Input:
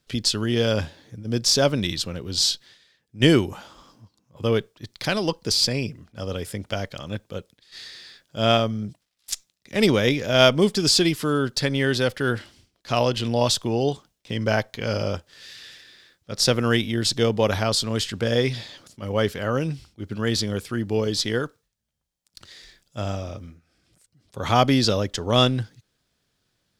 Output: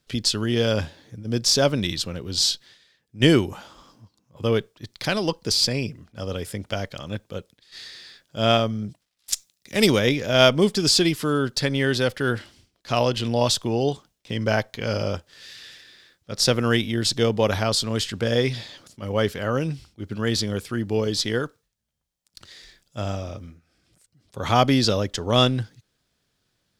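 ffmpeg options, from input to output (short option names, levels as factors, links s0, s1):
-filter_complex "[0:a]asettb=1/sr,asplit=3[s0][s1][s2];[s0]atrim=end=9.334[s3];[s1]atrim=start=9.33:end=9.99,asetpts=PTS-STARTPTS,afade=t=in:d=0.004:c=qsin,afade=t=out:st=0.656:d=0.004:c=qsin,highshelf=f=4800:g=9.5[s4];[s2]atrim=start=9.986[s5];[s3][s4]acrossfade=d=0.004:c1=hsin:c2=qsin[s6];[s6][s5]acrossfade=d=0.004:c1=qsin:c2=hsin"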